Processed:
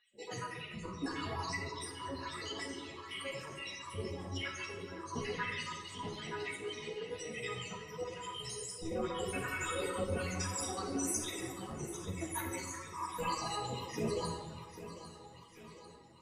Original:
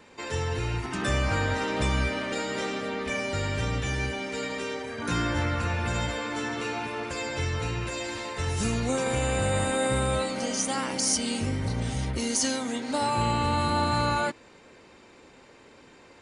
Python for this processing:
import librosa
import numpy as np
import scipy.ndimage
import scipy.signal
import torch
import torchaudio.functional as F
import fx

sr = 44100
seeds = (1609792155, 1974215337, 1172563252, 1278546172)

p1 = fx.spec_dropout(x, sr, seeds[0], share_pct=70)
p2 = scipy.signal.sosfilt(scipy.signal.butter(2, 8700.0, 'lowpass', fs=sr, output='sos'), p1)
p3 = fx.bass_treble(p2, sr, bass_db=-6, treble_db=8)
p4 = fx.pitch_keep_formants(p3, sr, semitones=6.0)
p5 = fx.harmonic_tremolo(p4, sr, hz=1.0, depth_pct=70, crossover_hz=880.0)
p6 = p5 + fx.echo_feedback(p5, sr, ms=797, feedback_pct=51, wet_db=-12.5, dry=0)
p7 = fx.room_shoebox(p6, sr, seeds[1], volume_m3=1300.0, walls='mixed', distance_m=1.8)
p8 = fx.ensemble(p7, sr)
y = p8 * 10.0 ** (-1.5 / 20.0)